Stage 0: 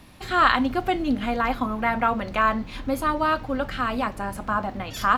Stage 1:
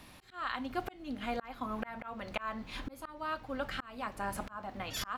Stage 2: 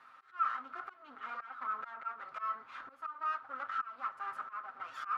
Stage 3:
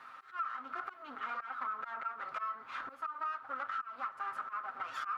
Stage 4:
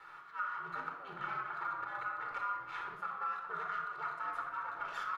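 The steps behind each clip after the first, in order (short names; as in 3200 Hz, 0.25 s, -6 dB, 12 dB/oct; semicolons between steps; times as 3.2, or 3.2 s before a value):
low shelf 450 Hz -6 dB; auto swell 0.621 s; vocal rider within 4 dB 0.5 s; gain -3.5 dB
minimum comb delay 7.5 ms; overloaded stage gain 35.5 dB; band-pass 1300 Hz, Q 11; gain +15 dB
compressor 6:1, threshold -42 dBFS, peak gain reduction 14.5 dB; gain +6.5 dB
ring modulator 99 Hz; speakerphone echo 0.33 s, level -12 dB; shoebox room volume 3400 m³, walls furnished, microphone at 4.3 m; gain -1 dB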